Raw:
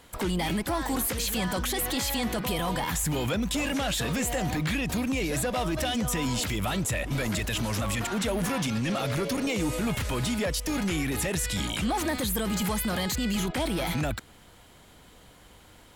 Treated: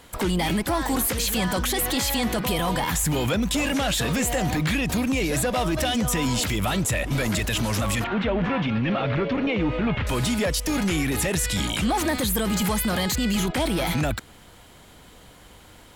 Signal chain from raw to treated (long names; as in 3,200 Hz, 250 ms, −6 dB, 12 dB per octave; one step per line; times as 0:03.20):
0:08.04–0:10.07: low-pass filter 3,100 Hz 24 dB per octave
level +4.5 dB